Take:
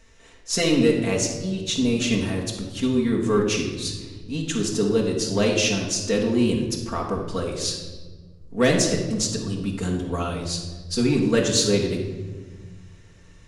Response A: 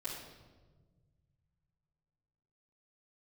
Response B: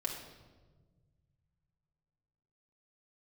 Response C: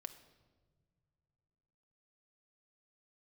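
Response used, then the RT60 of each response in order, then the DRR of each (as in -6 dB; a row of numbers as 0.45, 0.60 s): B; 1.4 s, 1.4 s, not exponential; -11.0, -2.0, 8.0 dB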